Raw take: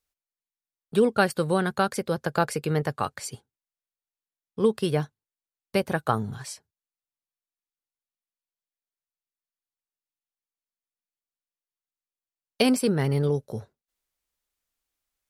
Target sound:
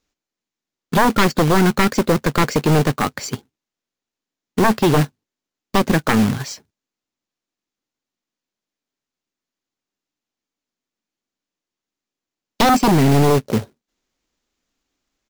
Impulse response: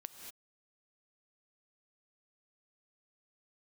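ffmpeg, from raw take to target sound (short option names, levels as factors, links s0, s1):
-af "equalizer=f=260:t=o:w=1.3:g=12,aresample=16000,aeval=exprs='0.794*sin(PI/2*3.98*val(0)/0.794)':c=same,aresample=44100,acrusher=bits=2:mode=log:mix=0:aa=0.000001,volume=0.447"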